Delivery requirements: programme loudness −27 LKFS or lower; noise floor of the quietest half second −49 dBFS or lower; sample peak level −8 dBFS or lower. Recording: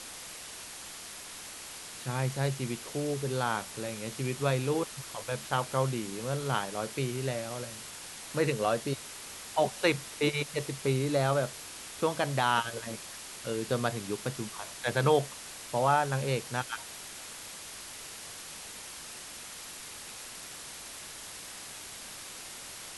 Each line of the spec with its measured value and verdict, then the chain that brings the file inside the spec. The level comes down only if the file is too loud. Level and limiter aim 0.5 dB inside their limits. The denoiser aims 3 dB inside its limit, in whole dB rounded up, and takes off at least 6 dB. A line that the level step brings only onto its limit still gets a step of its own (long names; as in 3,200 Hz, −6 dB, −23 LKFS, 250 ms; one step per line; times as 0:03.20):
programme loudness −33.0 LKFS: in spec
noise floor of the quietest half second −45 dBFS: out of spec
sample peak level −12.0 dBFS: in spec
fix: broadband denoise 7 dB, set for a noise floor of −45 dBFS